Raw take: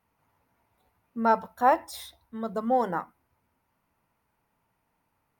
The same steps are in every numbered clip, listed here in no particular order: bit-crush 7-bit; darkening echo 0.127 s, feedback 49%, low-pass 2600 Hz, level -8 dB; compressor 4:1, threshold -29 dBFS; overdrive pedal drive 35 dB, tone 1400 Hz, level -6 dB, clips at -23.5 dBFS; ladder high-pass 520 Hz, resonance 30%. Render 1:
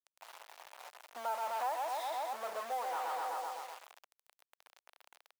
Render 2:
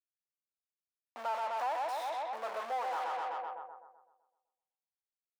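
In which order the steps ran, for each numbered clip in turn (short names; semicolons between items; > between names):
darkening echo > overdrive pedal > compressor > bit-crush > ladder high-pass; bit-crush > darkening echo > compressor > overdrive pedal > ladder high-pass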